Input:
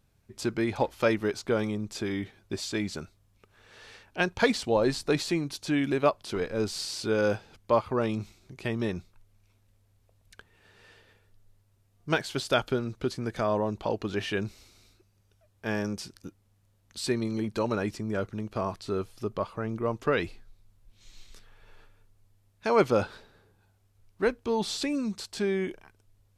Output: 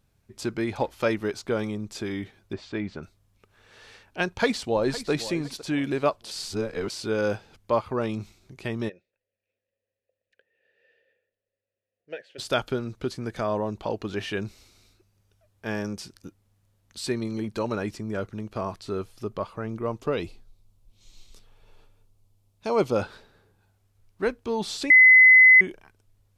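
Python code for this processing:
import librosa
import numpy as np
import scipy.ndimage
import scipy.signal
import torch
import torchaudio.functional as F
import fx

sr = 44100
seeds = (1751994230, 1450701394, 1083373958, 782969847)

y = fx.lowpass(x, sr, hz=2400.0, slope=12, at=(2.53, 3.03))
y = fx.echo_throw(y, sr, start_s=4.26, length_s=0.84, ms=510, feedback_pct=30, wet_db=-14.5)
y = fx.vowel_filter(y, sr, vowel='e', at=(8.88, 12.38), fade=0.02)
y = fx.peak_eq(y, sr, hz=1700.0, db=-10.5, octaves=0.74, at=(20.01, 22.96))
y = fx.edit(y, sr, fx.reverse_span(start_s=6.31, length_s=0.59),
    fx.bleep(start_s=24.9, length_s=0.71, hz=2030.0, db=-9.5), tone=tone)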